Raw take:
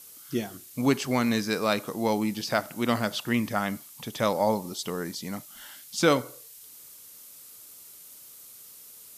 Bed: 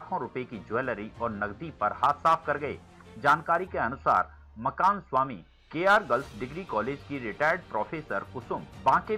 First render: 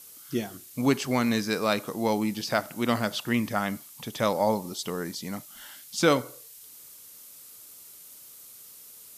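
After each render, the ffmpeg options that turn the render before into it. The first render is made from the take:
-af anull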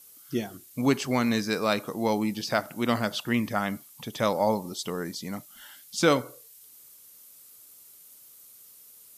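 -af "afftdn=nr=6:nf=-49"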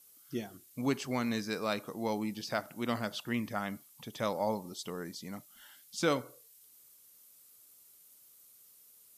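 -af "volume=-8dB"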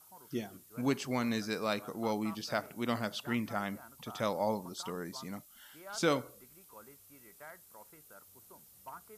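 -filter_complex "[1:a]volume=-25.5dB[a];[0:a][a]amix=inputs=2:normalize=0"

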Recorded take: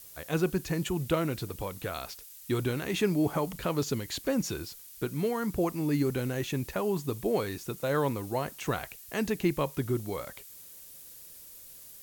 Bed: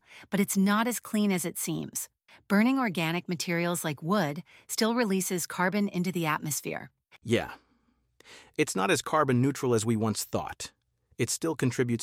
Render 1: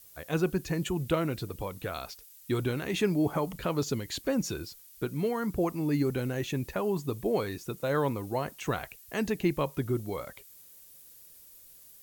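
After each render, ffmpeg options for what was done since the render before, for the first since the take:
-af "afftdn=nr=6:nf=-49"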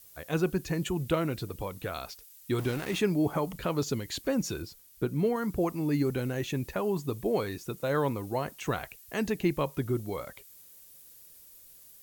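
-filter_complex "[0:a]asettb=1/sr,asplit=3[a][b][c];[a]atrim=end=2.584[d];[b]atrim=start=2.58:end=2.99,asetpts=PTS-STARTPTS,afade=t=in:d=0.004:c=qsin,afade=t=out:st=0.406:d=0.004:c=qsin,aeval=exprs='val(0)*gte(abs(val(0)),0.0141)':c=same[e];[c]atrim=start=2.986[f];[d][e]acrossfade=d=0.004:c1=hsin:c2=qsin[g];[g][f]acrossfade=d=0.004:c1=qsin:c2=hsin,asettb=1/sr,asplit=3[h][i][j];[h]atrim=end=4.624[k];[i]atrim=start=4.62:end=5.36,asetpts=PTS-STARTPTS,afade=t=in:d=0.004:c=qsin,afade=t=out:st=0.736:d=0.004:c=qsin,tiltshelf=f=970:g=3.5[l];[j]atrim=start=5.356[m];[k][l]acrossfade=d=0.004:c1=hsin:c2=qsin[n];[n][m]acrossfade=d=0.004:c1=qsin:c2=hsin"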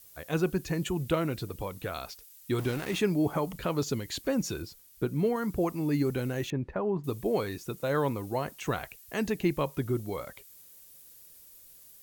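-filter_complex "[0:a]asettb=1/sr,asplit=3[a][b][c];[a]atrim=end=6.504[d];[b]atrim=start=6.5:end=7.04,asetpts=PTS-STARTPTS,afade=t=in:d=0.004:c=qsin,afade=t=out:st=0.536:d=0.004:c=qsin,lowpass=1.5k[e];[c]atrim=start=7.036[f];[d][e]acrossfade=d=0.004:c1=hsin:c2=qsin[g];[g][f]acrossfade=d=0.004:c1=qsin:c2=hsin"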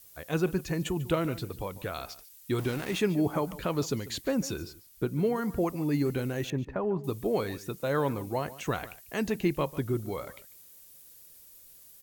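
-filter_complex "[0:a]asplit=2[a][b];[b]adelay=145.8,volume=-17dB,highshelf=f=4k:g=-3.28[c];[a][c]amix=inputs=2:normalize=0"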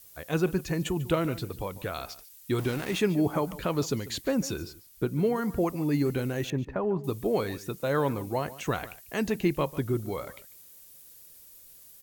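-af "volume=1.5dB"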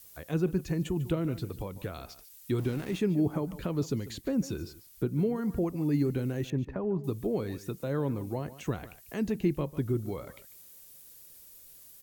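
-filter_complex "[0:a]acrossover=split=410[a][b];[b]acompressor=threshold=-48dB:ratio=2[c];[a][c]amix=inputs=2:normalize=0"

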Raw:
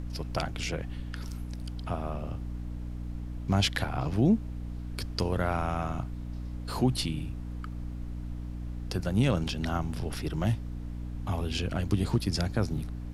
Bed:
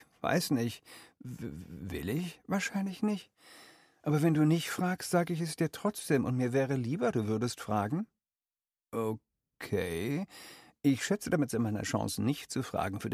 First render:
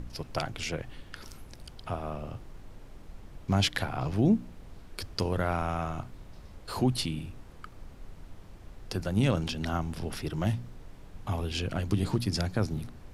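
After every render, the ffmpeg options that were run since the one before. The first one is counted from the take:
-af "bandreject=f=60:t=h:w=4,bandreject=f=120:t=h:w=4,bandreject=f=180:t=h:w=4,bandreject=f=240:t=h:w=4,bandreject=f=300:t=h:w=4"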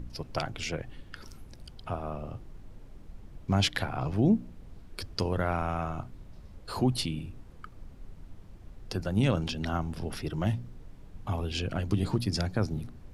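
-af "afftdn=nr=6:nf=-49"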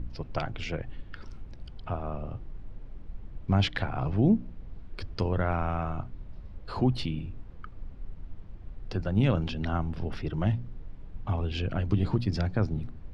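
-af "lowpass=3.4k,lowshelf=f=79:g=7.5"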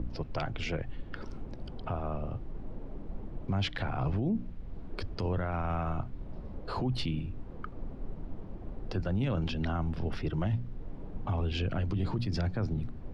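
-filter_complex "[0:a]acrossover=split=180|970[a][b][c];[b]acompressor=mode=upward:threshold=-36dB:ratio=2.5[d];[a][d][c]amix=inputs=3:normalize=0,alimiter=limit=-23dB:level=0:latency=1:release=33"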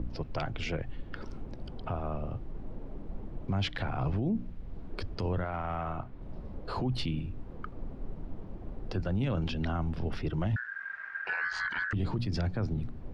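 -filter_complex "[0:a]asettb=1/sr,asplit=3[a][b][c];[a]atrim=end=5.444[d];[b]atrim=start=5.44:end=6.22,asetpts=PTS-STARTPTS,afade=t=in:d=0.004:c=qsin,afade=t=out:st=0.776:d=0.004:c=qsin,asplit=2[e][f];[f]highpass=f=720:p=1,volume=8dB,asoftclip=type=tanh:threshold=-22.5dB[g];[e][g]amix=inputs=2:normalize=0,lowpass=f=1.6k:p=1,volume=-6dB[h];[c]atrim=start=6.216[i];[d][h]acrossfade=d=0.004:c1=hsin:c2=qsin[j];[j][i]acrossfade=d=0.004:c1=qsin:c2=hsin,asettb=1/sr,asplit=3[k][l][m];[k]atrim=end=10.564[n];[l]atrim=start=10.56:end=11.93,asetpts=PTS-STARTPTS,afade=t=in:d=0.004:c=qsin,afade=t=out:st=1.366:d=0.004:c=qsin,aeval=exprs='val(0)*sin(2*PI*1600*n/s)':c=same[o];[m]atrim=start=11.926[p];[n][o]acrossfade=d=0.004:c1=hsin:c2=qsin[q];[q][p]acrossfade=d=0.004:c1=qsin:c2=hsin"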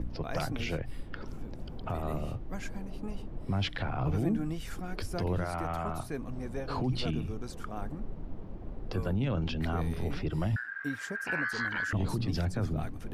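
-filter_complex "[1:a]volume=-9.5dB[a];[0:a][a]amix=inputs=2:normalize=0"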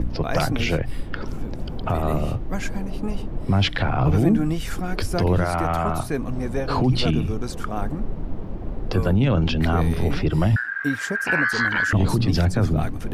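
-af "volume=11.5dB"

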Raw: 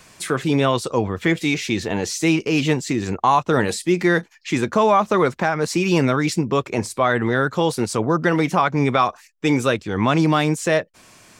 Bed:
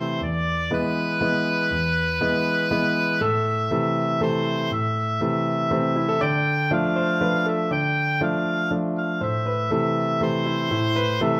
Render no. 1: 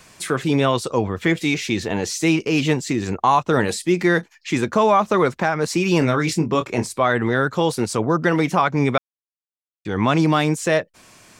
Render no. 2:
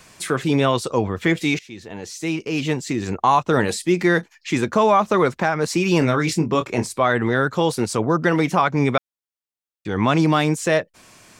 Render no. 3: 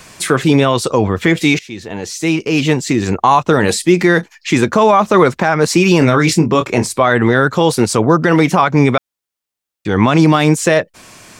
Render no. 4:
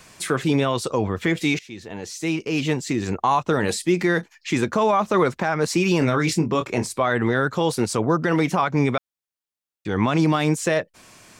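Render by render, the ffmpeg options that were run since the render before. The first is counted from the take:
-filter_complex "[0:a]asettb=1/sr,asplit=3[a][b][c];[a]atrim=end=5.994[d];[b]atrim=start=5.99:end=6.85,asetpts=PTS-STARTPTS,afade=t=in:d=0.004:c=qsin,afade=t=out:st=0.856:d=0.004:c=qsin,asplit=2[e][f];[f]adelay=25,volume=-8dB[g];[e][g]amix=inputs=2:normalize=0,atrim=end_sample=37926[h];[c]atrim=start=6.846[i];[d][h]acrossfade=d=0.004:c1=hsin:c2=qsin[j];[j][i]acrossfade=d=0.004:c1=qsin:c2=hsin,asplit=3[k][l][m];[k]atrim=end=8.98,asetpts=PTS-STARTPTS,afade=t=out:st=8.976:d=0.004:c=hsin[n];[l]atrim=start=8.98:end=9.85,asetpts=PTS-STARTPTS,volume=0[o];[m]atrim=start=9.85,asetpts=PTS-STARTPTS,afade=t=in:d=0.004:c=hsin[p];[n][o][p]concat=n=3:v=0:a=1"
-filter_complex "[0:a]asplit=2[a][b];[a]atrim=end=1.59,asetpts=PTS-STARTPTS,afade=t=out:st=1.586:d=0.004:c=hsin:silence=0.0944061[c];[b]atrim=start=1.59,asetpts=PTS-STARTPTS,afade=t=in:d=1.69:silence=0.0944061[d];[c][d]concat=n=2:v=0:a=1"
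-af "alimiter=level_in=9dB:limit=-1dB:release=50:level=0:latency=1"
-af "volume=-9dB"

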